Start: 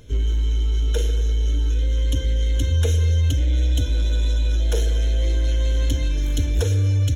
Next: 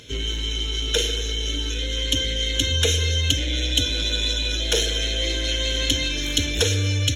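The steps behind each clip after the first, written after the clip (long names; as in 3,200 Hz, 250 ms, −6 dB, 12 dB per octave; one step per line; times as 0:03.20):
meter weighting curve D
level +3 dB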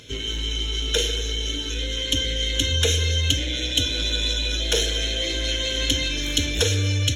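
flanger 0.55 Hz, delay 7.5 ms, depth 6.7 ms, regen −80%
level +4 dB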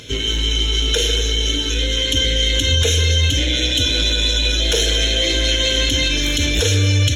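brickwall limiter −15 dBFS, peak gain reduction 11 dB
level +8 dB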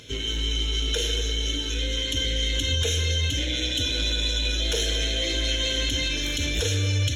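convolution reverb RT60 0.90 s, pre-delay 30 ms, DRR 12 dB
level −8.5 dB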